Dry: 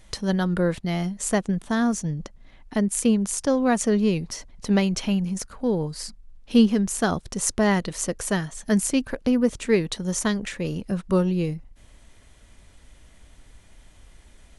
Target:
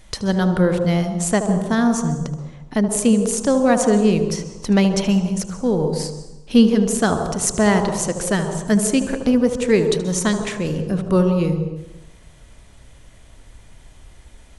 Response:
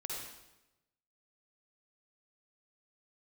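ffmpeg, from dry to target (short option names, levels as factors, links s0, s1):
-filter_complex "[0:a]asplit=2[s0][s1];[s1]equalizer=f=125:t=o:w=1:g=10,equalizer=f=250:t=o:w=1:g=-5,equalizer=f=500:t=o:w=1:g=4,equalizer=f=1000:t=o:w=1:g=4,equalizer=f=2000:t=o:w=1:g=-10,equalizer=f=4000:t=o:w=1:g=-5,equalizer=f=8000:t=o:w=1:g=12[s2];[1:a]atrim=start_sample=2205,lowpass=3700,adelay=76[s3];[s2][s3]afir=irnorm=-1:irlink=0,volume=0.531[s4];[s0][s4]amix=inputs=2:normalize=0,volume=1.58"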